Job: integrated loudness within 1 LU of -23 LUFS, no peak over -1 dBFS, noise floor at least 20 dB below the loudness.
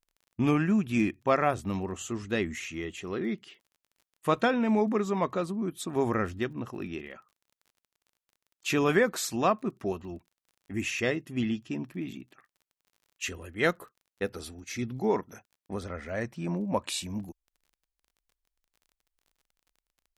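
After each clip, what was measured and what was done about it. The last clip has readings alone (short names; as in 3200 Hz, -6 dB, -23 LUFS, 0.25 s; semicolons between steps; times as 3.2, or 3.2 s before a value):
ticks 31/s; loudness -30.5 LUFS; peak -11.0 dBFS; loudness target -23.0 LUFS
-> de-click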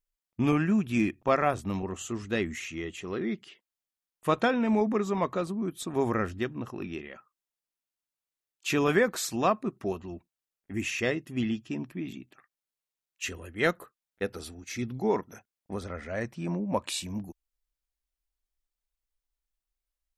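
ticks 0/s; loudness -30.5 LUFS; peak -11.0 dBFS; loudness target -23.0 LUFS
-> gain +7.5 dB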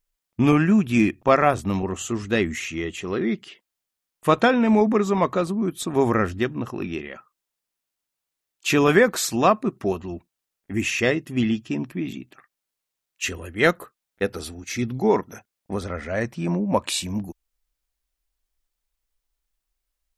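loudness -23.0 LUFS; peak -3.5 dBFS; noise floor -84 dBFS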